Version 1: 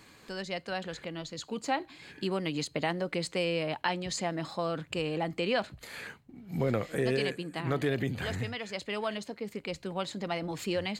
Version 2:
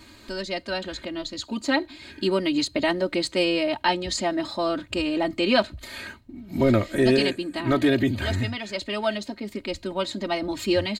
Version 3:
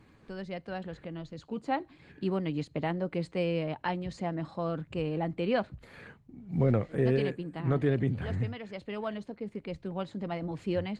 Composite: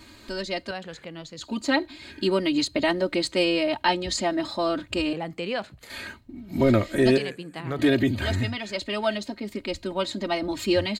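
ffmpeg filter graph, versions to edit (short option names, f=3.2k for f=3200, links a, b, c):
-filter_complex "[0:a]asplit=3[a][b][c];[1:a]asplit=4[d][e][f][g];[d]atrim=end=0.712[h];[a]atrim=start=0.708:end=1.412[i];[e]atrim=start=1.408:end=5.132[j];[b]atrim=start=5.128:end=5.902[k];[f]atrim=start=5.898:end=7.182[l];[c]atrim=start=7.178:end=7.792[m];[g]atrim=start=7.788[n];[h][i]acrossfade=d=0.004:c1=hsin:c2=hsin[o];[o][j]acrossfade=d=0.004:c1=hsin:c2=hsin[p];[p][k]acrossfade=d=0.004:c1=hsin:c2=hsin[q];[q][l]acrossfade=d=0.004:c1=hsin:c2=hsin[r];[r][m]acrossfade=d=0.004:c1=hsin:c2=hsin[s];[s][n]acrossfade=d=0.004:c1=hsin:c2=hsin"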